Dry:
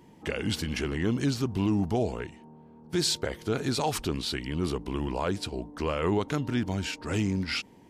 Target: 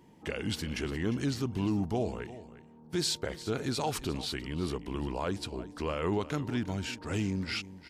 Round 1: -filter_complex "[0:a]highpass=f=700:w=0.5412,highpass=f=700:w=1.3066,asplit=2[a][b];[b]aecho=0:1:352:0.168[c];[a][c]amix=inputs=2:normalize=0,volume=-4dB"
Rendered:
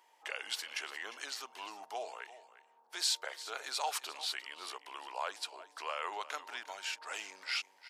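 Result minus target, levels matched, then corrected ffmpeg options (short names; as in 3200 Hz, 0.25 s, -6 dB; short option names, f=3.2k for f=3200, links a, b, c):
500 Hz band -7.0 dB
-filter_complex "[0:a]asplit=2[a][b];[b]aecho=0:1:352:0.168[c];[a][c]amix=inputs=2:normalize=0,volume=-4dB"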